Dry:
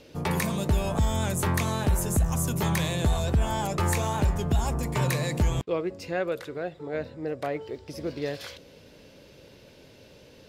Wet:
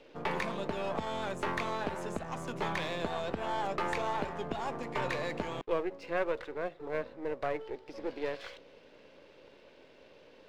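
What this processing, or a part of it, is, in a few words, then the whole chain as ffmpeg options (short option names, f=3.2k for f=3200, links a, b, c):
crystal radio: -af "highpass=330,lowpass=2.9k,aeval=exprs='if(lt(val(0),0),0.447*val(0),val(0))':c=same"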